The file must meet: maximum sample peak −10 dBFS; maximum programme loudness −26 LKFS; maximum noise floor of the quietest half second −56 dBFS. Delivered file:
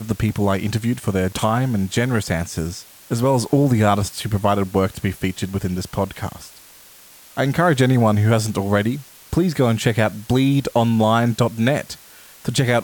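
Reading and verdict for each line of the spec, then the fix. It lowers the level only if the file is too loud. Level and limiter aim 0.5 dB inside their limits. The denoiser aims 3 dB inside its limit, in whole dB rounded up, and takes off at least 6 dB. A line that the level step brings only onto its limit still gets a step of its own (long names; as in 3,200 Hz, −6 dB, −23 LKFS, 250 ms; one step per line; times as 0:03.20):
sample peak −4.0 dBFS: out of spec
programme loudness −19.5 LKFS: out of spec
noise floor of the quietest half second −46 dBFS: out of spec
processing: broadband denoise 6 dB, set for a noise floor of −46 dBFS
level −7 dB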